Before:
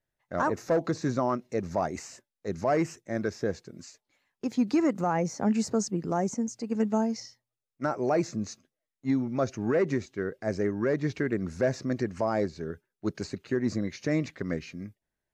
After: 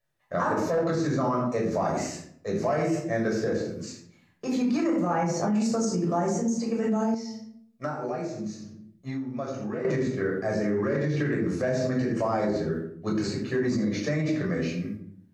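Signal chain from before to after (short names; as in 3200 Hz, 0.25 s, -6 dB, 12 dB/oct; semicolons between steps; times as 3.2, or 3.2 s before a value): shoebox room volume 920 m³, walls furnished, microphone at 5.9 m; 7.14–9.85 compressor 12:1, threshold -27 dBFS, peak gain reduction 16 dB; limiter -16.5 dBFS, peak gain reduction 10.5 dB; low shelf 130 Hz -10.5 dB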